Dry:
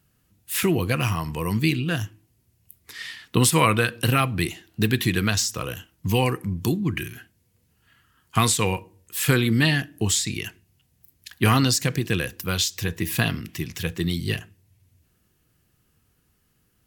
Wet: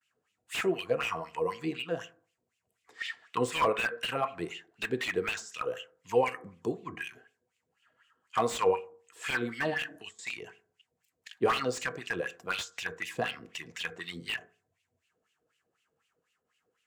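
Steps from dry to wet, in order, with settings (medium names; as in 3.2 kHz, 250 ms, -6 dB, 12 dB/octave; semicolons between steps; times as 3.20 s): gate with hold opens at -57 dBFS; peaking EQ 7.4 kHz +13 dB 0.66 oct; 9.74–10.19 s: compressor with a negative ratio -29 dBFS, ratio -1; wah-wah 4 Hz 460–2900 Hz, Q 4.1; reverberation RT60 0.45 s, pre-delay 3 ms, DRR 12 dB; slew-rate limiter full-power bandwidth 58 Hz; trim +4 dB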